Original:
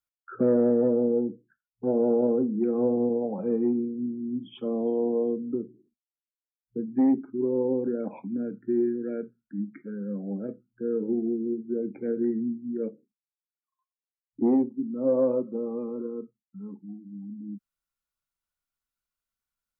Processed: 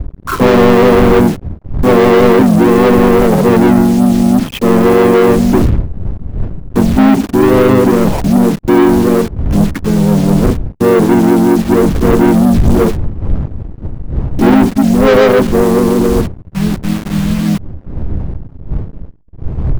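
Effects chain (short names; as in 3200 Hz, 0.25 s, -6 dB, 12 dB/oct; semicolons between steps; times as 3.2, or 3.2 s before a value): level-crossing sampler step -44.5 dBFS; wind noise 89 Hz -41 dBFS; sample leveller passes 5; harmoniser -4 st -3 dB; gain +6.5 dB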